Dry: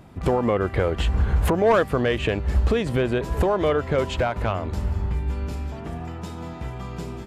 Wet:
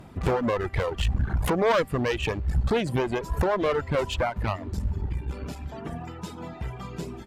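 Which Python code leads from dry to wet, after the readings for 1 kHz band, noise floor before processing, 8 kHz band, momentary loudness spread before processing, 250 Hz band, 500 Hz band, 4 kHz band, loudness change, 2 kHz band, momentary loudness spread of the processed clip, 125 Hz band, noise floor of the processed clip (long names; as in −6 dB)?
−2.5 dB, −35 dBFS, −0.5 dB, 14 LU, −4.0 dB, −4.0 dB, −1.0 dB, −4.0 dB, −2.5 dB, 13 LU, −4.0 dB, −42 dBFS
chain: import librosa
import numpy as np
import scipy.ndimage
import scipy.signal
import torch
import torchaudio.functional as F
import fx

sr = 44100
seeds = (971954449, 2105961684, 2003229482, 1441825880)

y = fx.clip_asym(x, sr, top_db=-27.5, bottom_db=-14.5)
y = fx.dereverb_blind(y, sr, rt60_s=2.0)
y = y * librosa.db_to_amplitude(1.5)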